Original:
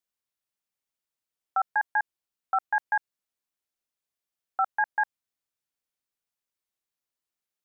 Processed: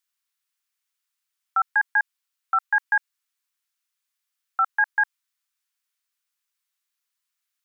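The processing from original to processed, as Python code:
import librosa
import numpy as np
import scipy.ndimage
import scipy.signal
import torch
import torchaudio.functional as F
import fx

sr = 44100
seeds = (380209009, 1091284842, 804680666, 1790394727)

y = scipy.signal.sosfilt(scipy.signal.butter(4, 1100.0, 'highpass', fs=sr, output='sos'), x)
y = y * 10.0 ** (7.5 / 20.0)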